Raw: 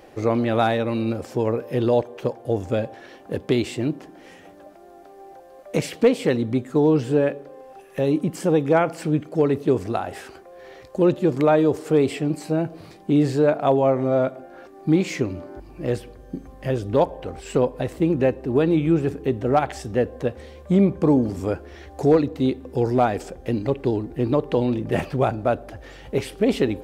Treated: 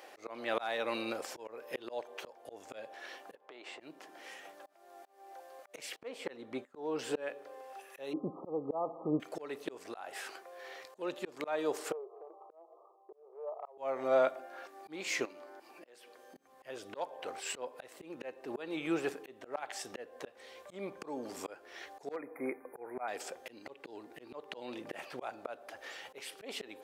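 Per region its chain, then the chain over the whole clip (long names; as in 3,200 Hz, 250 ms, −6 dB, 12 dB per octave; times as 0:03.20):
0:03.35–0:03.80: resonant band-pass 840 Hz, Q 1.1 + downward compressor 5 to 1, threshold −36 dBFS
0:05.96–0:06.99: noise gate −35 dBFS, range −23 dB + high-shelf EQ 2,600 Hz −10 dB
0:08.13–0:09.20: linear-phase brick-wall low-pass 1,300 Hz + spectral tilt −3 dB per octave
0:11.92–0:13.78: linear-phase brick-wall band-pass 340–1,300 Hz + downward compressor 3 to 1, threshold −37 dBFS + multiband upward and downward expander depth 70%
0:15.25–0:16.36: high-pass filter 230 Hz + downward compressor 2 to 1, threshold −43 dBFS
0:22.16–0:23.08: linear-phase brick-wall band-stop 2,500–9,000 Hz + low-shelf EQ 150 Hz −9 dB
whole clip: Bessel high-pass filter 870 Hz, order 2; volume swells 353 ms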